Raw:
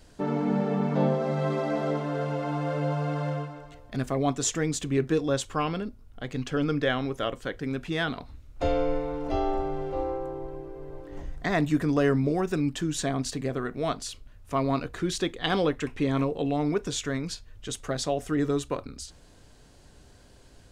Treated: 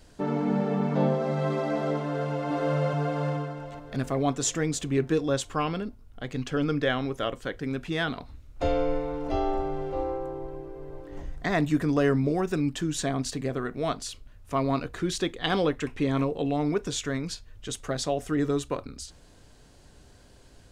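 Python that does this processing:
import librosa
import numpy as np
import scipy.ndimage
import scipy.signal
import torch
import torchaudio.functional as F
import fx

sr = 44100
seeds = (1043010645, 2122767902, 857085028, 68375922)

y = fx.echo_throw(x, sr, start_s=2.07, length_s=0.43, ms=430, feedback_pct=55, wet_db=-0.5)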